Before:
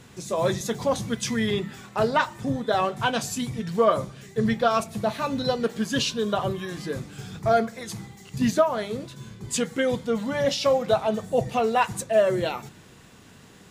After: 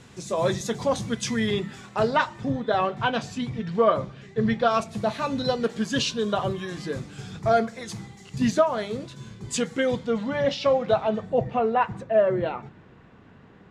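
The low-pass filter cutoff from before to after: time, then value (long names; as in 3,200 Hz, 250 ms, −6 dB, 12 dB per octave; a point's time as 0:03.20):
0:01.84 9,000 Hz
0:02.68 3,600 Hz
0:04.42 3,600 Hz
0:05.00 8,100 Hz
0:09.68 8,100 Hz
0:10.40 3,600 Hz
0:11.04 3,600 Hz
0:11.58 1,800 Hz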